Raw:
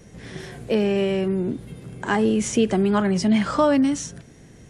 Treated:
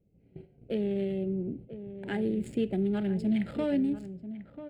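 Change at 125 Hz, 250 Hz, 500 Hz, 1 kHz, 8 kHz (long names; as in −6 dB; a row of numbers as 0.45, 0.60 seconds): −8.0 dB, −8.5 dB, −10.5 dB, −20.0 dB, below −25 dB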